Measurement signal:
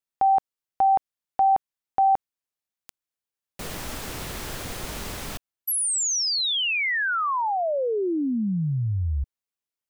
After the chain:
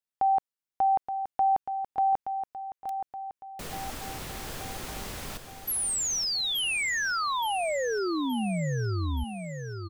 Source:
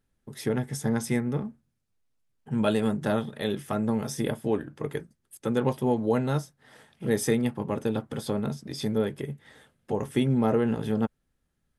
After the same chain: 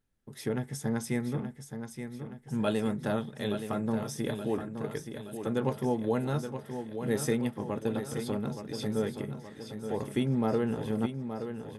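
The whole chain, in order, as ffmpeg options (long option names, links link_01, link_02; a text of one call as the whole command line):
ffmpeg -i in.wav -af "aecho=1:1:873|1746|2619|3492|4365|5238:0.376|0.195|0.102|0.0528|0.0275|0.0143,volume=-4.5dB" out.wav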